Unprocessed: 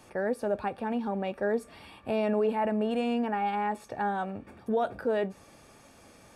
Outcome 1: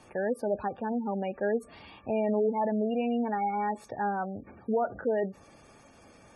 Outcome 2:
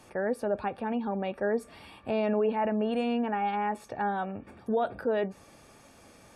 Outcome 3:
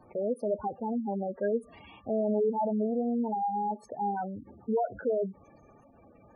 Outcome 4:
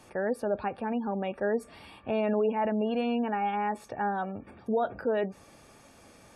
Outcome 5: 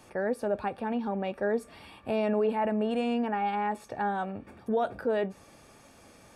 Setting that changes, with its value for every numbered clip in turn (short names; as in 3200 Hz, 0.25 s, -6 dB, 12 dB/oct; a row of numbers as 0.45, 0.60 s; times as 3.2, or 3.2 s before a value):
spectral gate, under each frame's peak: -20, -45, -10, -35, -60 dB